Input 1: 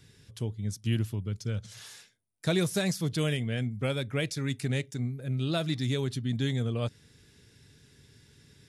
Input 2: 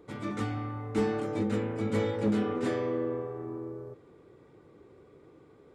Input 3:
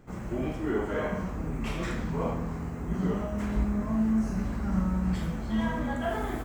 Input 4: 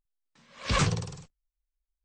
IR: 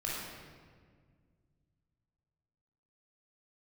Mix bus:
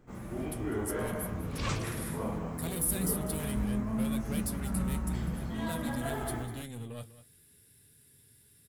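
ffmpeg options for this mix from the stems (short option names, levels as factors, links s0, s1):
-filter_complex "[0:a]aeval=exprs='0.158*(cos(1*acos(clip(val(0)/0.158,-1,1)))-cos(1*PI/2))+0.0501*(cos(5*acos(clip(val(0)/0.158,-1,1)))-cos(5*PI/2))':c=same,aexciter=amount=11.8:drive=6.5:freq=8900,adelay=150,volume=0.237,asplit=2[s0][s1];[s1]volume=0.178[s2];[1:a]volume=0.2[s3];[2:a]volume=0.841,asplit=2[s4][s5];[s5]volume=0.473[s6];[3:a]adelay=900,volume=0.531[s7];[s2][s6]amix=inputs=2:normalize=0,aecho=0:1:198:1[s8];[s0][s3][s4][s7][s8]amix=inputs=5:normalize=0,flanger=delay=7.9:depth=6.2:regen=-63:speed=0.49:shape=triangular"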